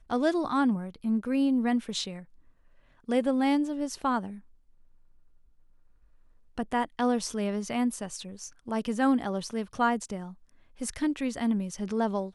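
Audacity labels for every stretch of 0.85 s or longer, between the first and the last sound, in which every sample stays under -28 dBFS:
2.070000	3.090000	silence
4.250000	6.590000	silence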